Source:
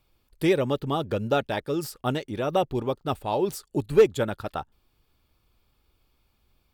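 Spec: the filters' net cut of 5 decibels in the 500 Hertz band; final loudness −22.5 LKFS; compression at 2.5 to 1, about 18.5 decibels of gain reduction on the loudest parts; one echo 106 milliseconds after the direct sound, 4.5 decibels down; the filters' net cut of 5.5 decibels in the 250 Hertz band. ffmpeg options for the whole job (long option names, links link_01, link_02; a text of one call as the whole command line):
ffmpeg -i in.wav -af "equalizer=frequency=250:width_type=o:gain=-6.5,equalizer=frequency=500:width_type=o:gain=-4,acompressor=threshold=-46dB:ratio=2.5,aecho=1:1:106:0.596,volume=20.5dB" out.wav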